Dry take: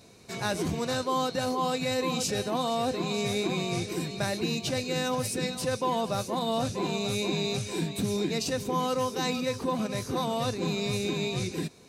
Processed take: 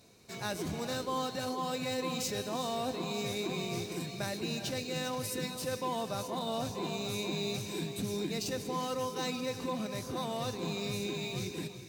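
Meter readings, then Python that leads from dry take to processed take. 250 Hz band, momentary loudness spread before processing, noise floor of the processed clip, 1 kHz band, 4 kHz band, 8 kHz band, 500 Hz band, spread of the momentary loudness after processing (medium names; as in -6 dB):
-6.5 dB, 3 LU, -44 dBFS, -6.5 dB, -5.0 dB, -5.0 dB, -6.5 dB, 3 LU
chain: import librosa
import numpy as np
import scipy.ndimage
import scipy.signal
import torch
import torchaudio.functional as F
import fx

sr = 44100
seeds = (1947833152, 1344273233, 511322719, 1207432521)

y = fx.high_shelf(x, sr, hz=5000.0, db=5.5)
y = fx.rev_gated(y, sr, seeds[0], gate_ms=440, shape='rising', drr_db=9.5)
y = np.interp(np.arange(len(y)), np.arange(len(y))[::2], y[::2])
y = y * librosa.db_to_amplitude(-7.0)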